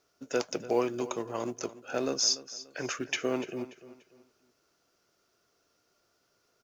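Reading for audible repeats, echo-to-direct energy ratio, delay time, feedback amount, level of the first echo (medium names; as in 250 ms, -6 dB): 3, -15.5 dB, 291 ms, 34%, -16.0 dB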